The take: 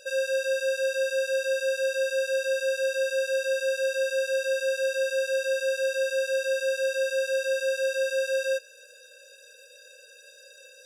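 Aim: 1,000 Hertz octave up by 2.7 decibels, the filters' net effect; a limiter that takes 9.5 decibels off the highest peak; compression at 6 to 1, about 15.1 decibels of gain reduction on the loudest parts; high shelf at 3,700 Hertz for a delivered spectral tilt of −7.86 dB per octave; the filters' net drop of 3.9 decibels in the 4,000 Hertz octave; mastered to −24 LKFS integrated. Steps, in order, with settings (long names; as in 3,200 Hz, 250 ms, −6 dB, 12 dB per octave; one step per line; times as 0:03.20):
parametric band 1,000 Hz +8.5 dB
high-shelf EQ 3,700 Hz +4.5 dB
parametric band 4,000 Hz −7.5 dB
downward compressor 6 to 1, threshold −38 dBFS
level +21 dB
brickwall limiter −18.5 dBFS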